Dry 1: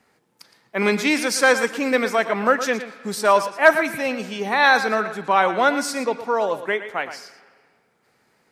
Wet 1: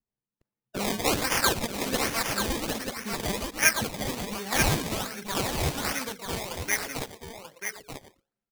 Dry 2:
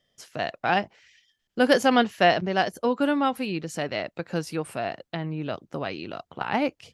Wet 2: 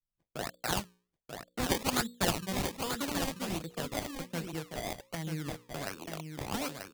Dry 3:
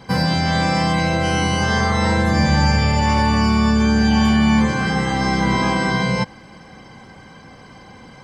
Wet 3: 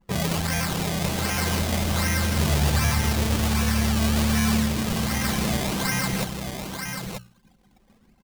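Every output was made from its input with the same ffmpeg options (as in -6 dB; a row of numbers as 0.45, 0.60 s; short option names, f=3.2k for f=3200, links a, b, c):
-filter_complex "[0:a]anlmdn=15.8,equalizer=f=1.7k:w=0.52:g=3.5,bandreject=f=60:t=h:w=6,bandreject=f=120:t=h:w=6,bandreject=f=180:t=h:w=6,bandreject=f=240:t=h:w=6,bandreject=f=300:t=h:w=6,bandreject=f=360:t=h:w=6,bandreject=f=420:t=h:w=6,bandreject=f=480:t=h:w=6,bandreject=f=540:t=h:w=6,acrossover=split=200|1800[a][b][c];[b]acompressor=threshold=-35dB:ratio=5[d];[a][d][c]amix=inputs=3:normalize=0,acrusher=samples=22:mix=1:aa=0.000001:lfo=1:lforange=22:lforate=1.3,asplit=2[e][f];[f]aecho=0:1:937:0.501[g];[e][g]amix=inputs=2:normalize=0,adynamicequalizer=threshold=0.00891:dfrequency=2400:dqfactor=0.7:tfrequency=2400:tqfactor=0.7:attack=5:release=100:ratio=0.375:range=4:mode=boostabove:tftype=highshelf,volume=-5dB"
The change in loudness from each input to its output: -8.0, -9.5, -6.5 LU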